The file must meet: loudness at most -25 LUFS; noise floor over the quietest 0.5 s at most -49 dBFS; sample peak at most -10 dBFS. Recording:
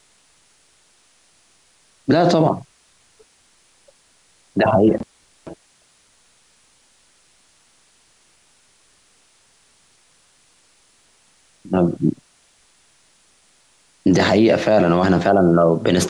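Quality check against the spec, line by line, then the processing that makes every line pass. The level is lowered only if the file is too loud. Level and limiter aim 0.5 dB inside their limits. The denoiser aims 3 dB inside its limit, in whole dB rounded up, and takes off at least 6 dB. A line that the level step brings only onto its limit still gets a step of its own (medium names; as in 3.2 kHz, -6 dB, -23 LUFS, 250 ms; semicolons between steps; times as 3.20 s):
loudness -17.0 LUFS: fail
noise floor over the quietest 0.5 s -57 dBFS: pass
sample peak -5.5 dBFS: fail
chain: trim -8.5 dB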